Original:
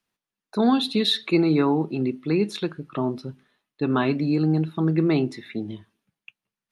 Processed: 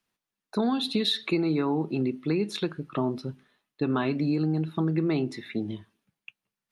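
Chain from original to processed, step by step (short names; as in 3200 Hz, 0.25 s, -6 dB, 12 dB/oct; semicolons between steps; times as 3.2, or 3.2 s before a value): compressor, threshold -22 dBFS, peak gain reduction 8 dB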